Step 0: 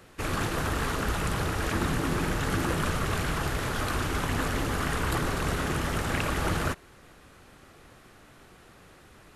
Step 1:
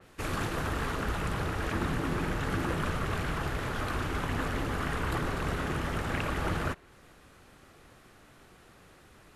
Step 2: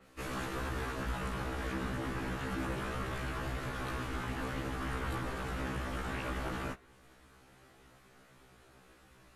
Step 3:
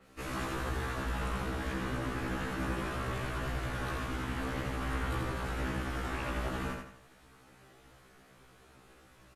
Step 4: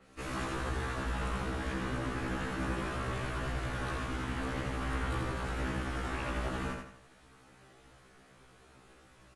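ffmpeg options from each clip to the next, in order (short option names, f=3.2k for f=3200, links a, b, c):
-af "adynamicequalizer=threshold=0.00355:dfrequency=3900:dqfactor=0.7:tfrequency=3900:tqfactor=0.7:attack=5:release=100:ratio=0.375:range=3.5:mode=cutabove:tftype=highshelf,volume=-3dB"
-filter_complex "[0:a]asplit=2[a][b];[b]alimiter=level_in=1dB:limit=-24dB:level=0:latency=1,volume=-1dB,volume=-1dB[c];[a][c]amix=inputs=2:normalize=0,afftfilt=real='re*1.73*eq(mod(b,3),0)':imag='im*1.73*eq(mod(b,3),0)':win_size=2048:overlap=0.75,volume=-7.5dB"
-af "aecho=1:1:84|168|252|336|420:0.631|0.24|0.0911|0.0346|0.0132"
-ar 24000 -c:a aac -b:a 96k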